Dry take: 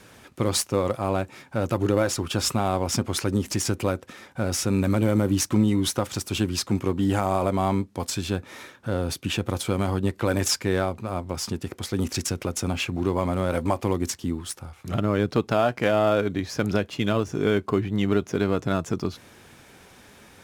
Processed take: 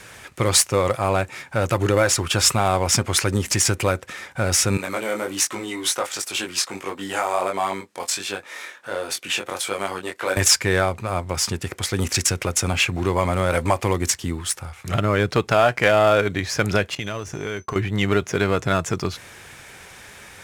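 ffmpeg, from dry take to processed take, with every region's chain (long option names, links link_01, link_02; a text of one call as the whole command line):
ffmpeg -i in.wav -filter_complex "[0:a]asettb=1/sr,asplit=3[link_01][link_02][link_03];[link_01]atrim=end=4.774[link_04];[link_02]atrim=start=4.77:end=10.37,asetpts=PTS-STARTPTS,afade=type=in:duration=0.004:curve=qsin,afade=type=out:start_time=5.596:duration=0.004:curve=qsin,highpass=370,flanger=delay=20:depth=3.3:speed=1.4[link_05];[link_03]atrim=start=10.366[link_06];[link_04][link_05]acrossfade=duration=0.004:curve1=hsin:curve2=qsin[link_07];[link_07][link_06]acrossfade=duration=0.004:curve1=qsin:curve2=hsin,asettb=1/sr,asplit=3[link_08][link_09][link_10];[link_08]atrim=end=16.954[link_11];[link_09]atrim=start=16.95:end=17.76,asetpts=PTS-STARTPTS,afade=type=in:duration=0.004:curve=qsin,afade=type=out:start_time=0.806:duration=0.004:curve=qsin,acompressor=threshold=-28dB:ratio=5:attack=3.2:release=140:knee=1:detection=peak,aeval=exprs='val(0)+0.00126*sin(2*PI*6100*n/s)':channel_layout=same,agate=range=-33dB:threshold=-38dB:ratio=3:release=100:detection=peak[link_12];[link_10]atrim=start=17.756[link_13];[link_11][link_12]acrossfade=duration=0.004:curve1=hsin:curve2=qsin[link_14];[link_14][link_13]acrossfade=duration=0.004:curve1=qsin:curve2=hsin,equalizer=frequency=250:width_type=o:width=1:gain=-8,equalizer=frequency=2000:width_type=o:width=1:gain=6,equalizer=frequency=8000:width_type=o:width=1:gain=5,acontrast=42" out.wav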